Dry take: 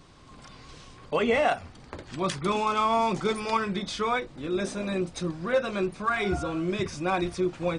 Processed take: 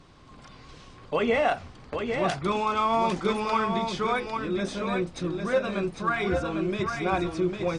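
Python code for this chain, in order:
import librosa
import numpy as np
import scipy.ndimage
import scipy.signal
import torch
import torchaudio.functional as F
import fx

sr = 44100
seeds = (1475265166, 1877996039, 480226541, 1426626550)

y = fx.high_shelf(x, sr, hz=7600.0, db=-10.5)
y = y + 10.0 ** (-5.5 / 20.0) * np.pad(y, (int(802 * sr / 1000.0), 0))[:len(y)]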